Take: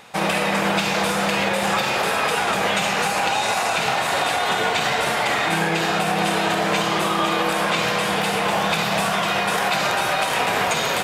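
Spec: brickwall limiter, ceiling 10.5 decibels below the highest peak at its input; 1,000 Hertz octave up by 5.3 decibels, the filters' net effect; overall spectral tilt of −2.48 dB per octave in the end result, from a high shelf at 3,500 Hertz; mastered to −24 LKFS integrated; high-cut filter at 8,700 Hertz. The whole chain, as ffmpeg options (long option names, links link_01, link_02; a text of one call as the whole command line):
ffmpeg -i in.wav -af "lowpass=8700,equalizer=frequency=1000:width_type=o:gain=6.5,highshelf=frequency=3500:gain=5,volume=-2.5dB,alimiter=limit=-16dB:level=0:latency=1" out.wav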